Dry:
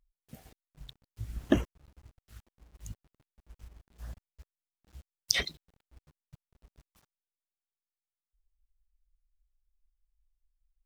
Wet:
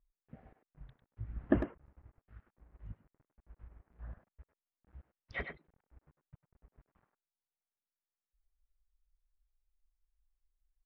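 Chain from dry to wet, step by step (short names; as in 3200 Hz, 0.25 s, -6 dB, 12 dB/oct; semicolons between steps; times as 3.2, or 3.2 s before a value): LPF 1900 Hz 24 dB/oct; speakerphone echo 0.1 s, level -7 dB; gain -3.5 dB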